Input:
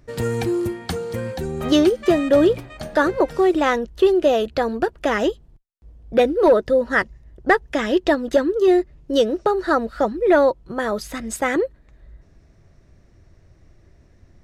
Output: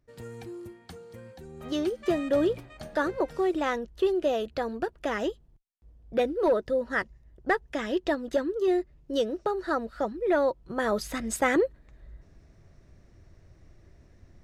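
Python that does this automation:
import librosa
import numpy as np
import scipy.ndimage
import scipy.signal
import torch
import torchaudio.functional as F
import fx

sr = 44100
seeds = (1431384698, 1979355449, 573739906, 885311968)

y = fx.gain(x, sr, db=fx.line((1.43, -19.0), (2.08, -9.5), (10.4, -9.5), (10.93, -3.0)))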